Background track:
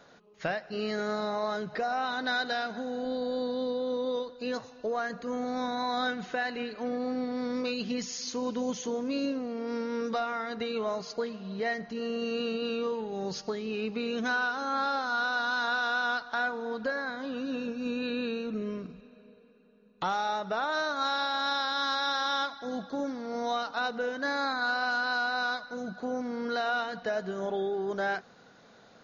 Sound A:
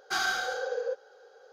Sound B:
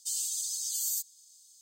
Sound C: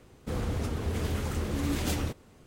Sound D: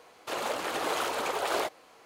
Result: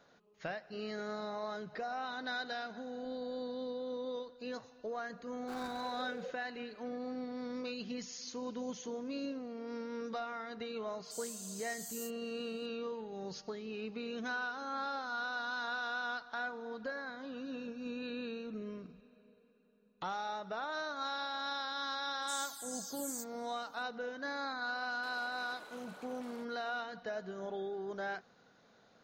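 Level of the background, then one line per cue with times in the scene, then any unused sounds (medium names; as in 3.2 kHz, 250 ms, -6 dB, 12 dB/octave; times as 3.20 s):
background track -9 dB
5.37 s: add A -12 dB + median filter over 25 samples
11.05 s: add B -15.5 dB + doubling 33 ms -2.5 dB
22.22 s: add B -8.5 dB + barber-pole phaser -2.5 Hz
24.76 s: add D -13 dB + compression 3:1, threshold -42 dBFS
not used: C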